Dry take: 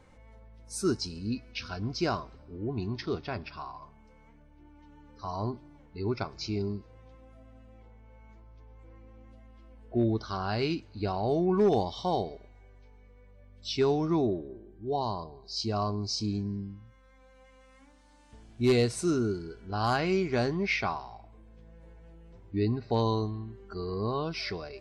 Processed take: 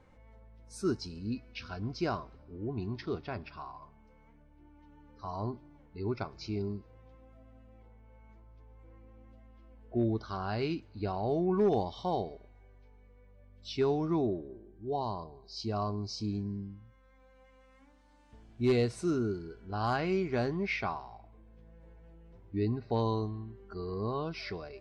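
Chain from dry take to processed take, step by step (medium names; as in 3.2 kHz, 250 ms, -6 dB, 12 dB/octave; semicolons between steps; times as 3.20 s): treble shelf 4.8 kHz -10.5 dB; trim -3 dB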